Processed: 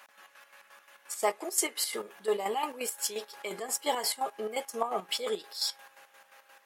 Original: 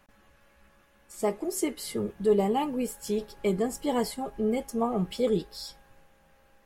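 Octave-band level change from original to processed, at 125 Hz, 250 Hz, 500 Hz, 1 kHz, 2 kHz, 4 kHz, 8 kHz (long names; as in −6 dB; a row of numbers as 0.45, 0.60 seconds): below −20 dB, −15.5 dB, −6.0 dB, +0.5 dB, +4.0 dB, +6.5 dB, +6.5 dB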